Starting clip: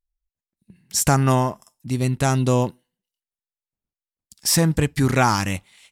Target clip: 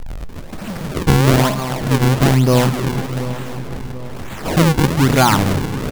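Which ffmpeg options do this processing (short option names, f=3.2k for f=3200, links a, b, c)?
-filter_complex "[0:a]aeval=exprs='val(0)+0.5*0.075*sgn(val(0))':c=same,aemphasis=mode=reproduction:type=50fm,bandreject=f=60:t=h:w=6,bandreject=f=120:t=h:w=6,bandreject=f=180:t=h:w=6,asplit=2[a][b];[b]aecho=0:1:310|620|930|1240|1550|1860:0.282|0.155|0.0853|0.0469|0.0258|0.0142[c];[a][c]amix=inputs=2:normalize=0,acrusher=samples=40:mix=1:aa=0.000001:lfo=1:lforange=64:lforate=1.1,asplit=2[d][e];[e]adelay=732,lowpass=f=3.3k:p=1,volume=-13.5dB,asplit=2[f][g];[g]adelay=732,lowpass=f=3.3k:p=1,volume=0.47,asplit=2[h][i];[i]adelay=732,lowpass=f=3.3k:p=1,volume=0.47,asplit=2[j][k];[k]adelay=732,lowpass=f=3.3k:p=1,volume=0.47,asplit=2[l][m];[m]adelay=732,lowpass=f=3.3k:p=1,volume=0.47[n];[f][h][j][l][n]amix=inputs=5:normalize=0[o];[d][o]amix=inputs=2:normalize=0,volume=3.5dB"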